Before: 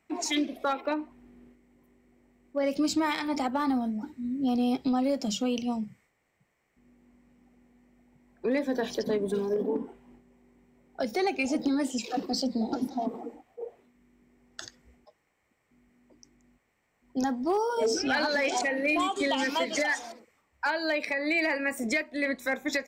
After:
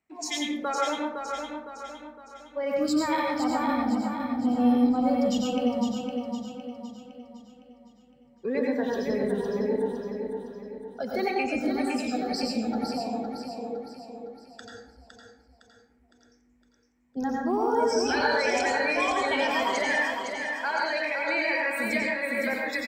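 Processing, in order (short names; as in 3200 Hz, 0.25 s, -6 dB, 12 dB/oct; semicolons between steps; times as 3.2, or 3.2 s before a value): spectral noise reduction 10 dB; on a send: feedback echo 0.51 s, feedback 46%, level -6 dB; on the sum: plate-style reverb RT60 0.65 s, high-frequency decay 0.55×, pre-delay 80 ms, DRR -1.5 dB; gain -2 dB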